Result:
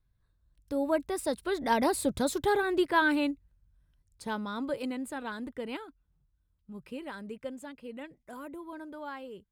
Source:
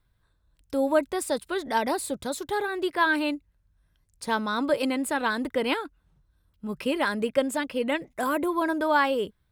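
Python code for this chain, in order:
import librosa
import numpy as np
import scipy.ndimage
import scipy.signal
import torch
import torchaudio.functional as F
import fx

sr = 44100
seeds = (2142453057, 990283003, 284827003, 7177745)

y = fx.doppler_pass(x, sr, speed_mps=10, closest_m=6.7, pass_at_s=2.32)
y = fx.low_shelf(y, sr, hz=270.0, db=8.5)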